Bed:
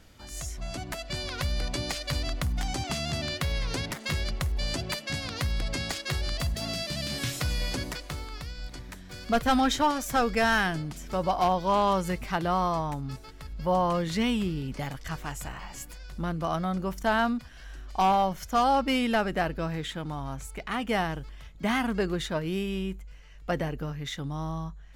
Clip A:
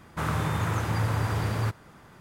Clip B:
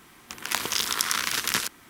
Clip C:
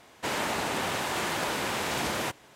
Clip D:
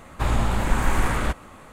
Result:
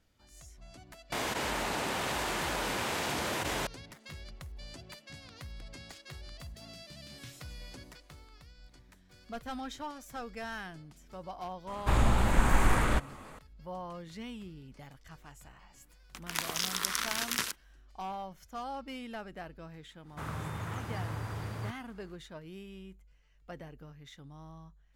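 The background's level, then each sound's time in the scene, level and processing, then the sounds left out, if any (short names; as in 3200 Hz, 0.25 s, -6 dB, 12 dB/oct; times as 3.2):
bed -16.5 dB
1.12 add C -5 dB + fast leveller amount 100%
11.67 add D -3.5 dB
15.84 add B -7 dB + gate -42 dBFS, range -18 dB
20 add A -11 dB, fades 0.10 s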